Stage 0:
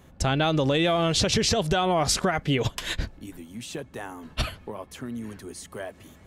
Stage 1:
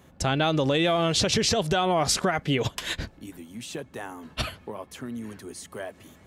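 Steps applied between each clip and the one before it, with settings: high-pass 97 Hz 6 dB/octave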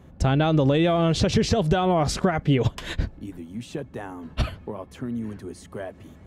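tilt EQ -2.5 dB/octave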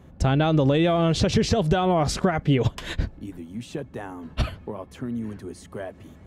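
no audible change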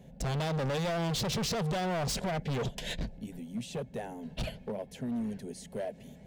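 saturation -13.5 dBFS, distortion -19 dB; static phaser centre 320 Hz, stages 6; hard clipper -30 dBFS, distortion -5 dB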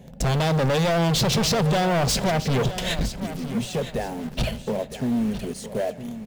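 in parallel at -9 dB: bit crusher 7-bit; on the sum: feedback delay 961 ms, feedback 27%, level -12.5 dB; reverberation RT60 0.55 s, pre-delay 4 ms, DRR 17 dB; trim +7.5 dB

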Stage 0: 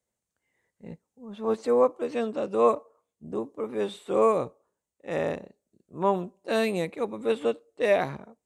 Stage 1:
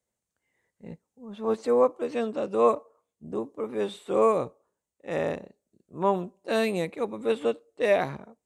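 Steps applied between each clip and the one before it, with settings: no audible change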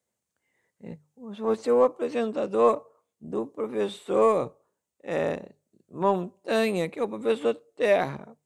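high-pass 73 Hz; hum notches 50/100/150 Hz; in parallel at -11.5 dB: saturation -25.5 dBFS, distortion -7 dB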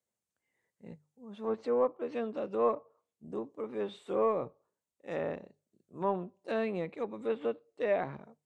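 low-pass that closes with the level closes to 2.2 kHz, closed at -21.5 dBFS; trim -8 dB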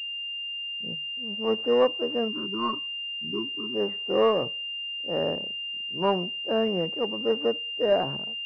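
time-frequency box 2.28–3.75 s, 430–910 Hz -26 dB; level-controlled noise filter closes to 310 Hz, open at -30 dBFS; class-D stage that switches slowly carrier 2.8 kHz; trim +7.5 dB

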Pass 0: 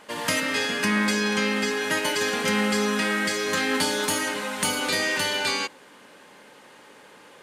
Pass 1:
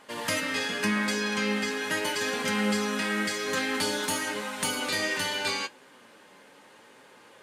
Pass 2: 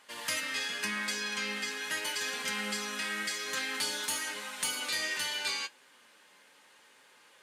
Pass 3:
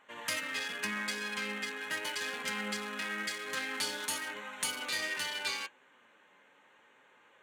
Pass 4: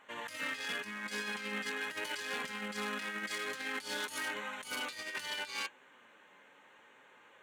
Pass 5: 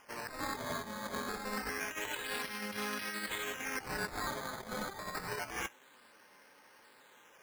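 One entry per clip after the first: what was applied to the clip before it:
flange 0.85 Hz, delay 7.3 ms, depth 4 ms, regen +58%
tilt shelf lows -7 dB; trim -8.5 dB
local Wiener filter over 9 samples
compressor with a negative ratio -39 dBFS, ratio -0.5
decimation with a swept rate 11×, swing 100% 0.27 Hz

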